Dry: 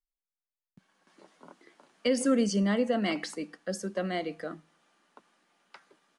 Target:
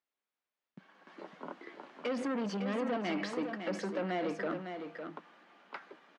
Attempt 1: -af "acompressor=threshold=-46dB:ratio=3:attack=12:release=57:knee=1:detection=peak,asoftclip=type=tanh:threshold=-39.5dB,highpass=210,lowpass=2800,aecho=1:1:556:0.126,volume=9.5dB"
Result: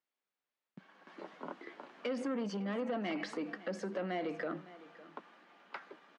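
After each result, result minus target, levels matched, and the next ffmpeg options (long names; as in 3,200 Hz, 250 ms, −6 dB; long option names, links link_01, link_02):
echo-to-direct −10.5 dB; downward compressor: peak gain reduction +5.5 dB
-af "acompressor=threshold=-46dB:ratio=3:attack=12:release=57:knee=1:detection=peak,asoftclip=type=tanh:threshold=-39.5dB,highpass=210,lowpass=2800,aecho=1:1:556:0.422,volume=9.5dB"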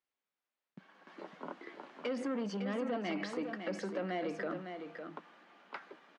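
downward compressor: peak gain reduction +5.5 dB
-af "acompressor=threshold=-38dB:ratio=3:attack=12:release=57:knee=1:detection=peak,asoftclip=type=tanh:threshold=-39.5dB,highpass=210,lowpass=2800,aecho=1:1:556:0.422,volume=9.5dB"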